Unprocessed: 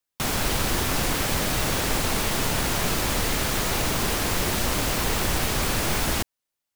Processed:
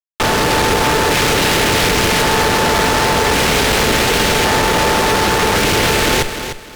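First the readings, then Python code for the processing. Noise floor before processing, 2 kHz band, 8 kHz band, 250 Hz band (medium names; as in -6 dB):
-85 dBFS, +13.5 dB, +7.5 dB, +10.5 dB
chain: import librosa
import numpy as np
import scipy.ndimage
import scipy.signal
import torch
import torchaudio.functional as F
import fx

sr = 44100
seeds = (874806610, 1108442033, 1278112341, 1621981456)

y = scipy.signal.sosfilt(scipy.signal.butter(4, 3600.0, 'lowpass', fs=sr, output='sos'), x)
y = y * np.sin(2.0 * np.pi * 440.0 * np.arange(len(y)) / sr)
y = fx.filter_lfo_notch(y, sr, shape='square', hz=0.45, low_hz=960.0, high_hz=2700.0, q=0.95)
y = fx.cheby_harmonics(y, sr, harmonics=(8,), levels_db=(-11,), full_scale_db=-14.5)
y = fx.fuzz(y, sr, gain_db=49.0, gate_db=-51.0)
y = fx.echo_feedback(y, sr, ms=301, feedback_pct=26, wet_db=-9.5)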